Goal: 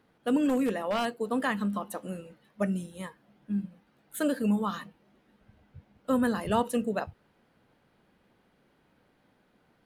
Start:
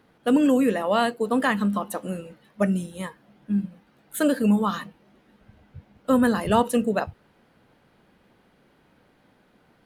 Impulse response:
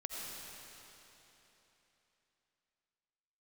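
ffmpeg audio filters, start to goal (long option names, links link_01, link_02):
-filter_complex "[0:a]asettb=1/sr,asplit=3[link_01][link_02][link_03];[link_01]atrim=end=0.494[link_04];[link_02]atrim=start=0.49:end=1.18,asetpts=PTS-STARTPTS,afade=type=in:duration=0.004:curve=qsin,afade=type=out:start_time=0.686:duration=0.004:curve=qsin,aeval=exprs='0.188*(abs(mod(val(0)/0.188+3,4)-2)-1)':channel_layout=same[link_05];[link_03]atrim=start=1.176[link_06];[link_04][link_05]acrossfade=duration=0.004:curve1=hsin:curve2=qsin[link_07];[link_07][link_06]acrossfade=duration=0.004:curve1=qsin:curve2=hsin,volume=-6.5dB"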